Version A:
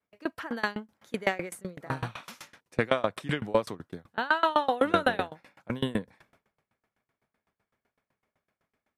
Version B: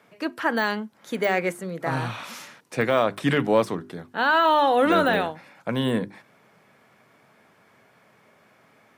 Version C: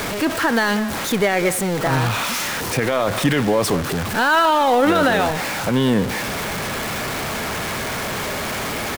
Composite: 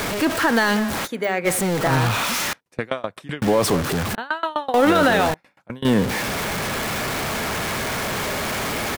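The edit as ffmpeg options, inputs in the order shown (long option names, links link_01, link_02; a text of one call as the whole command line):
ffmpeg -i take0.wav -i take1.wav -i take2.wav -filter_complex "[0:a]asplit=3[link_01][link_02][link_03];[2:a]asplit=5[link_04][link_05][link_06][link_07][link_08];[link_04]atrim=end=1.08[link_09];[1:a]atrim=start=1.04:end=1.48[link_10];[link_05]atrim=start=1.44:end=2.532[link_11];[link_01]atrim=start=2.528:end=3.422[link_12];[link_06]atrim=start=3.418:end=4.152[link_13];[link_02]atrim=start=4.148:end=4.742[link_14];[link_07]atrim=start=4.738:end=5.342[link_15];[link_03]atrim=start=5.338:end=5.852[link_16];[link_08]atrim=start=5.848[link_17];[link_09][link_10]acrossfade=duration=0.04:curve1=tri:curve2=tri[link_18];[link_18][link_11]acrossfade=duration=0.04:curve1=tri:curve2=tri[link_19];[link_19][link_12]acrossfade=duration=0.004:curve1=hsin:curve2=hsin[link_20];[link_20][link_13]acrossfade=duration=0.004:curve1=hsin:curve2=hsin[link_21];[link_21][link_14]acrossfade=duration=0.004:curve1=hsin:curve2=hsin[link_22];[link_22][link_15]acrossfade=duration=0.004:curve1=hsin:curve2=hsin[link_23];[link_23][link_16]acrossfade=duration=0.004:curve1=hsin:curve2=hsin[link_24];[link_24][link_17]acrossfade=duration=0.004:curve1=hsin:curve2=hsin" out.wav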